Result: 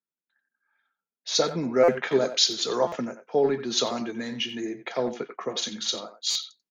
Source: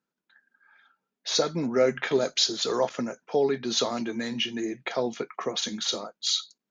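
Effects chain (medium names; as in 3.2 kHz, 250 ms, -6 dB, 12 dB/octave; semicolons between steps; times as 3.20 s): speakerphone echo 90 ms, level -9 dB; buffer glitch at 1.83/2.87/6.30 s, samples 256, times 8; three bands expanded up and down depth 40%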